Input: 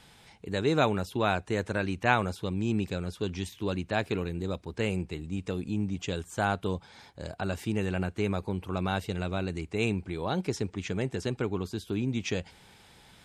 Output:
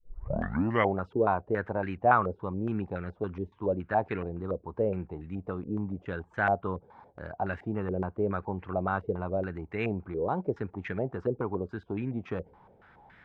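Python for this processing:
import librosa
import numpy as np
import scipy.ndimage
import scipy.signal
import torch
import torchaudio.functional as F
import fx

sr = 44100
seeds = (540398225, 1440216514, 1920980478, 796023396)

y = fx.tape_start_head(x, sr, length_s=0.98)
y = fx.filter_held_lowpass(y, sr, hz=7.1, low_hz=470.0, high_hz=1800.0)
y = y * 10.0 ** (-3.5 / 20.0)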